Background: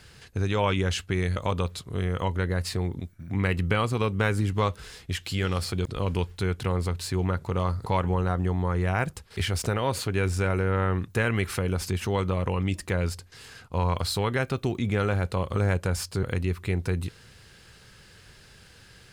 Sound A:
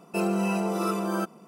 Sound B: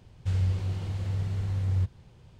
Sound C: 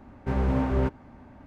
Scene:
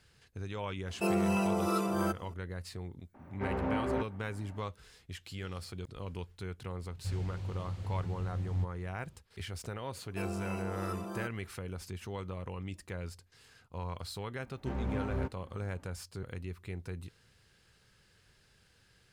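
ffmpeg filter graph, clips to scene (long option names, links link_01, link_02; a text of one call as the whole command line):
ffmpeg -i bed.wav -i cue0.wav -i cue1.wav -i cue2.wav -filter_complex "[1:a]asplit=2[link_01][link_02];[3:a]asplit=2[link_03][link_04];[0:a]volume=-14dB[link_05];[link_03]acrossover=split=240 3100:gain=0.224 1 0.224[link_06][link_07][link_08];[link_06][link_07][link_08]amix=inputs=3:normalize=0[link_09];[link_01]atrim=end=1.47,asetpts=PTS-STARTPTS,volume=-3.5dB,afade=type=in:duration=0.004:curve=hsin,afade=type=out:start_time=1.466:duration=0.004:curve=hsin,adelay=870[link_10];[link_09]atrim=end=1.46,asetpts=PTS-STARTPTS,volume=-3.5dB,afade=type=in:duration=0.004:curve=hsin,afade=type=out:start_time=1.456:duration=0.004:curve=hsin,adelay=3140[link_11];[2:a]atrim=end=2.39,asetpts=PTS-STARTPTS,volume=-8dB,afade=type=in:duration=0.004:curve=hsin,afade=type=out:start_time=2.386:duration=0.004:curve=hsin,adelay=6790[link_12];[link_02]atrim=end=1.47,asetpts=PTS-STARTPTS,volume=-12.5dB,afade=type=in:duration=0.004:curve=hsin,afade=type=out:start_time=1.466:duration=0.004:curve=hsin,adelay=441882S[link_13];[link_04]atrim=end=1.46,asetpts=PTS-STARTPTS,volume=-10.5dB,afade=type=in:duration=0.004:curve=hsin,afade=type=out:start_time=1.456:duration=0.004:curve=hsin,adelay=14390[link_14];[link_05][link_10][link_11][link_12][link_13][link_14]amix=inputs=6:normalize=0" out.wav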